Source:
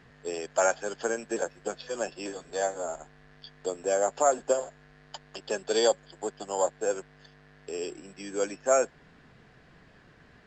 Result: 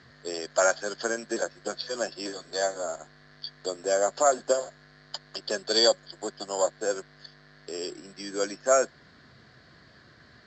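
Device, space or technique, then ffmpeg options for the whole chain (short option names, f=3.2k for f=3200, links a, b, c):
car door speaker: -af "highpass=83,equalizer=f=170:t=q:w=4:g=-8,equalizer=f=270:t=q:w=4:g=-4,equalizer=f=450:t=q:w=4:g=-7,equalizer=f=840:t=q:w=4:g=-9,equalizer=f=2.6k:t=q:w=4:g=-10,equalizer=f=4.4k:t=q:w=4:g=10,lowpass=f=7.4k:w=0.5412,lowpass=f=7.4k:w=1.3066,volume=4.5dB"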